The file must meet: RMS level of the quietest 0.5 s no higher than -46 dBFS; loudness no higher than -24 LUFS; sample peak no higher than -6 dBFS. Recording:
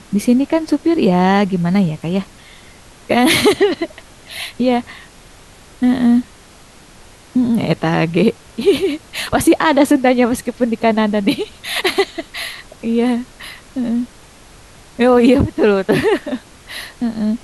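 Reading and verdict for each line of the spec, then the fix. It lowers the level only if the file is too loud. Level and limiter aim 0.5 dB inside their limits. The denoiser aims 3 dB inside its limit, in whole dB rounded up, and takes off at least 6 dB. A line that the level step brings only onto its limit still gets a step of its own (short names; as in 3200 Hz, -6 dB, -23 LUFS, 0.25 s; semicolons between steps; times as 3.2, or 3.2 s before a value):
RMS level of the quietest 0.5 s -43 dBFS: fail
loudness -16.0 LUFS: fail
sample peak -2.5 dBFS: fail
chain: gain -8.5 dB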